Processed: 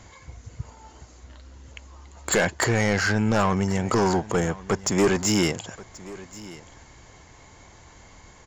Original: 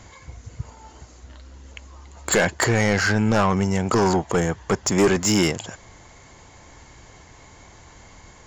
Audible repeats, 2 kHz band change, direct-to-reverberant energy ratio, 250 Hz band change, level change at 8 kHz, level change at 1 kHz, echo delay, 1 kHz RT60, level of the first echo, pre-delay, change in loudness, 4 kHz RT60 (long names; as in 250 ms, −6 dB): 1, −2.5 dB, no reverb audible, −2.5 dB, −2.5 dB, −2.5 dB, 1,081 ms, no reverb audible, −19.0 dB, no reverb audible, −2.5 dB, no reverb audible